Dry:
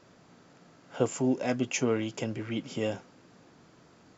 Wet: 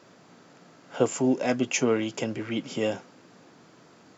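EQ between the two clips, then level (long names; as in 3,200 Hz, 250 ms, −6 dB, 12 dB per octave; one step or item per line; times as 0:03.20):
Bessel high-pass filter 160 Hz, order 2
+4.5 dB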